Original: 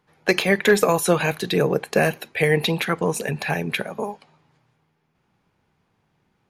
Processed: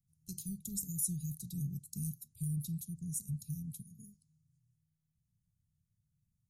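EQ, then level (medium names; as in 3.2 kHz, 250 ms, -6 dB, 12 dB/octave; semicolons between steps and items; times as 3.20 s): inverse Chebyshev band-stop 600–1900 Hz, stop band 80 dB; -6.0 dB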